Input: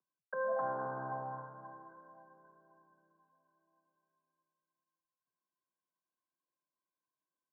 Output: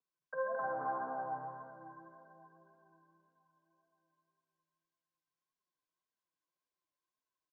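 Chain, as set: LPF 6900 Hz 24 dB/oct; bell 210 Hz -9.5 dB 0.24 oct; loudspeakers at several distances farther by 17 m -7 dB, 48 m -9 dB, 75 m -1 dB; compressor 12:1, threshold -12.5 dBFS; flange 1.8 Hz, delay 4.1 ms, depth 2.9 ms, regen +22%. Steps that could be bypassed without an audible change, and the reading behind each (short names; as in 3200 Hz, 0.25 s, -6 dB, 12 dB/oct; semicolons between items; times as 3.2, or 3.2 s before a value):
LPF 6900 Hz: input band ends at 1600 Hz; compressor, threshold -12.5 dBFS: input peak -23.0 dBFS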